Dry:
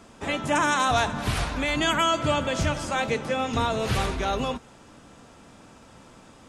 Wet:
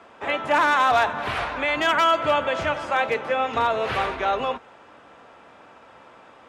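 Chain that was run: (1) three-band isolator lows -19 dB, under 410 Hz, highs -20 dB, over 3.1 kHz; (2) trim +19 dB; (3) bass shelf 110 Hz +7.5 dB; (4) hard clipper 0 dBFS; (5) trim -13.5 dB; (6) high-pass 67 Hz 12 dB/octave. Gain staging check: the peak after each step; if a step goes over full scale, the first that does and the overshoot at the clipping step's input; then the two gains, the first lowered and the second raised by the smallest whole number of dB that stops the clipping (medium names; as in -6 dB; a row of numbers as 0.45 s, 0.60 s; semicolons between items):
-13.5 dBFS, +5.5 dBFS, +5.5 dBFS, 0.0 dBFS, -13.5 dBFS, -12.0 dBFS; step 2, 5.5 dB; step 2 +13 dB, step 5 -7.5 dB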